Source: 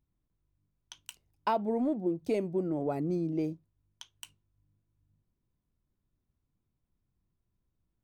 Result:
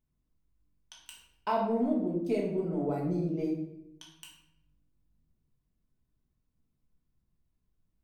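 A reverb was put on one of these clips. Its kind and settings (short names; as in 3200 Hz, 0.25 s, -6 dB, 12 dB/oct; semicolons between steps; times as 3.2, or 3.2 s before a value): shoebox room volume 230 m³, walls mixed, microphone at 1.5 m; gain -5 dB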